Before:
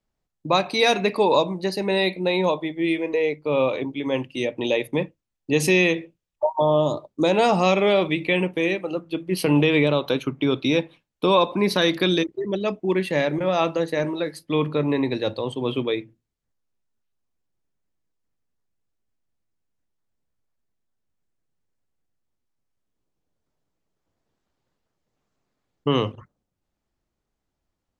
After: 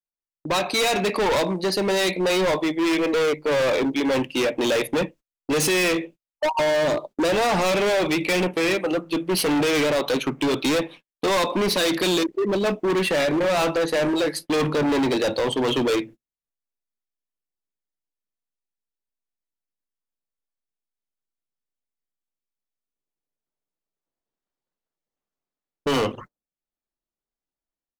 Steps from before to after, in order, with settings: gate -44 dBFS, range -26 dB; peaking EQ 91 Hz -13.5 dB 1.5 oct; level rider gain up to 11.5 dB; overload inside the chain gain 20.5 dB; trim +1.5 dB

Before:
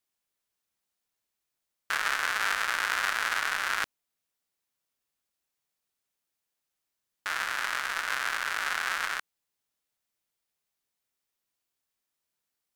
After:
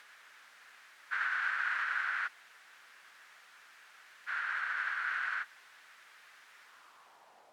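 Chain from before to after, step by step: jump at every zero crossing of -34.5 dBFS; plain phase-vocoder stretch 0.59×; band-pass sweep 1.6 kHz -> 550 Hz, 6.57–7.71 s

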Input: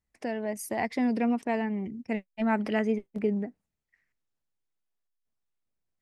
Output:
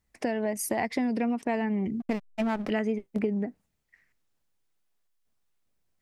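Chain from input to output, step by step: compression 6:1, threshold -33 dBFS, peak gain reduction 11.5 dB; 2.00–2.70 s: hysteresis with a dead band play -38.5 dBFS; trim +8 dB

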